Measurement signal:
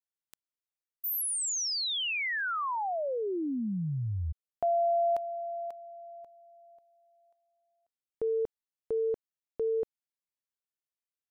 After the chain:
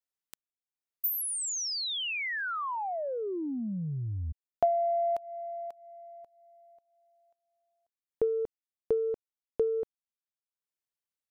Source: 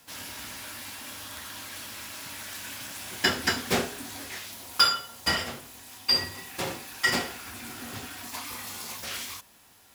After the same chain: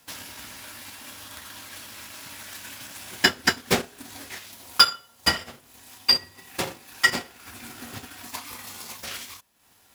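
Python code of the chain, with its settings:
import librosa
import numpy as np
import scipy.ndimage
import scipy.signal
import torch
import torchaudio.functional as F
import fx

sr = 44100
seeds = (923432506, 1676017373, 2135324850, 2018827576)

y = fx.transient(x, sr, attack_db=8, sustain_db=-10)
y = y * 10.0 ** (-1.5 / 20.0)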